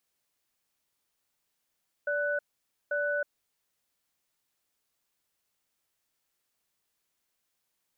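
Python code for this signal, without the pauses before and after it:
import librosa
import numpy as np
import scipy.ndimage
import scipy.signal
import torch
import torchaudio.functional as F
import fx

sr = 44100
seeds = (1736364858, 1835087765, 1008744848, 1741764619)

y = fx.cadence(sr, length_s=1.67, low_hz=582.0, high_hz=1490.0, on_s=0.32, off_s=0.52, level_db=-29.5)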